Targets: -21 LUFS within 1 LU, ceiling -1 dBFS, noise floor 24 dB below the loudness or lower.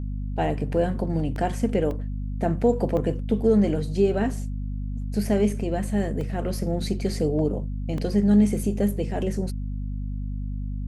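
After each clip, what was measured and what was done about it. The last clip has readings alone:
dropouts 7; longest dropout 1.8 ms; hum 50 Hz; harmonics up to 250 Hz; hum level -27 dBFS; loudness -25.5 LUFS; peak -9.0 dBFS; loudness target -21.0 LUFS
-> interpolate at 0.61/1.36/1.91/2.97/6.21/7.39/7.98, 1.8 ms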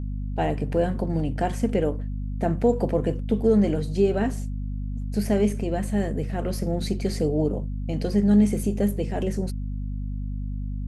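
dropouts 0; hum 50 Hz; harmonics up to 250 Hz; hum level -27 dBFS
-> notches 50/100/150/200/250 Hz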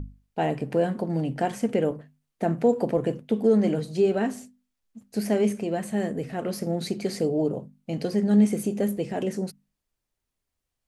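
hum none; loudness -26.0 LUFS; peak -10.0 dBFS; loudness target -21.0 LUFS
-> gain +5 dB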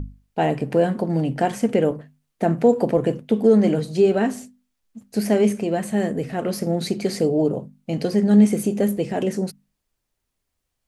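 loudness -21.0 LUFS; peak -5.0 dBFS; noise floor -78 dBFS

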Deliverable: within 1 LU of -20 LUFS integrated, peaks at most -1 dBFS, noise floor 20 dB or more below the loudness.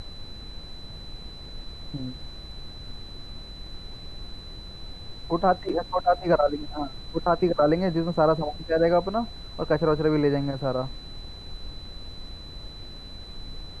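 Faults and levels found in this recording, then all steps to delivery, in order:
steady tone 4000 Hz; tone level -43 dBFS; noise floor -42 dBFS; noise floor target -45 dBFS; loudness -25.0 LUFS; peak -8.0 dBFS; loudness target -20.0 LUFS
-> notch 4000 Hz, Q 30; noise print and reduce 6 dB; gain +5 dB

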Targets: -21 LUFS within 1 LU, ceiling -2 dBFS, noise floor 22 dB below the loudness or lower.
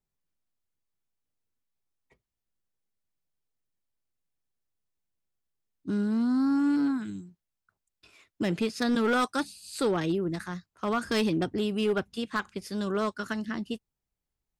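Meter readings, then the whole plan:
clipped 0.5%; flat tops at -20.5 dBFS; loudness -29.0 LUFS; peak -20.5 dBFS; loudness target -21.0 LUFS
-> clip repair -20.5 dBFS; gain +8 dB

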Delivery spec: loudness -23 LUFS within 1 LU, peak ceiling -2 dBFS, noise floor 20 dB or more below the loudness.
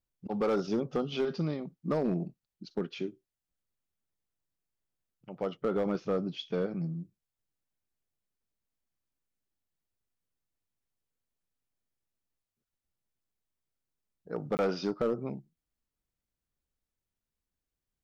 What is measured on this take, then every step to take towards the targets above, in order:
clipped 0.4%; flat tops at -22.5 dBFS; dropouts 1; longest dropout 19 ms; loudness -33.5 LUFS; peak -22.5 dBFS; loudness target -23.0 LUFS
-> clip repair -22.5 dBFS; interpolate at 14.57, 19 ms; gain +10.5 dB

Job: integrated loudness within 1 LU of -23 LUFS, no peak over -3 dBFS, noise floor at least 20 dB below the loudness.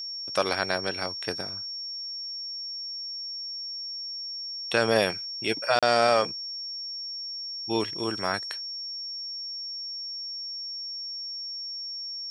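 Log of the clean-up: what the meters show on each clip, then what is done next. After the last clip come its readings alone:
dropouts 1; longest dropout 36 ms; steady tone 5500 Hz; tone level -33 dBFS; loudness -29.0 LUFS; peak -6.5 dBFS; loudness target -23.0 LUFS
-> interpolate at 5.79, 36 ms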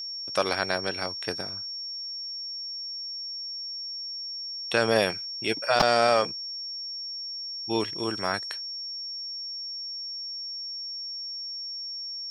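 dropouts 0; steady tone 5500 Hz; tone level -33 dBFS
-> notch 5500 Hz, Q 30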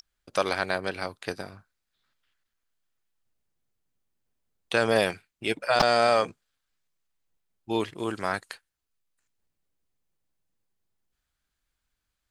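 steady tone none; loudness -27.0 LUFS; peak -5.0 dBFS; loudness target -23.0 LUFS
-> gain +4 dB; limiter -3 dBFS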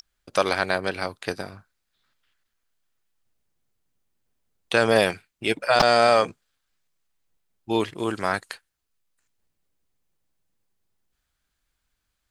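loudness -23.0 LUFS; peak -3.0 dBFS; noise floor -78 dBFS

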